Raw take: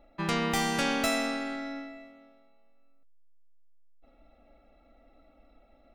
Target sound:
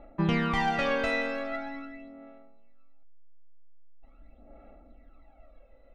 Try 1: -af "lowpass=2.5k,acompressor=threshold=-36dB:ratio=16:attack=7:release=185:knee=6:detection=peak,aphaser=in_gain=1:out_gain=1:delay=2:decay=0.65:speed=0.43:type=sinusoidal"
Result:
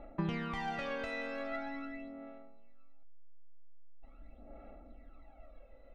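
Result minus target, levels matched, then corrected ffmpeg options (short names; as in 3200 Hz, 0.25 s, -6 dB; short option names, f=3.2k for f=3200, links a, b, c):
compressor: peak gain reduction +13 dB
-af "lowpass=2.5k,aphaser=in_gain=1:out_gain=1:delay=2:decay=0.65:speed=0.43:type=sinusoidal"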